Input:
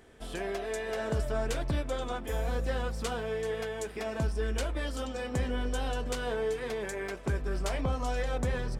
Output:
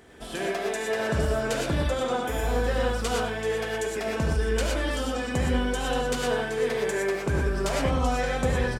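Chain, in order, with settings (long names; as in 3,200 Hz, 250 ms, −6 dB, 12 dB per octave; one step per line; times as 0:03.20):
high-pass filter 74 Hz 6 dB per octave
on a send: single-tap delay 96 ms −14.5 dB
on the sum: reverb whose tail is shaped and stops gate 140 ms rising, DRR −0.5 dB
level +4.5 dB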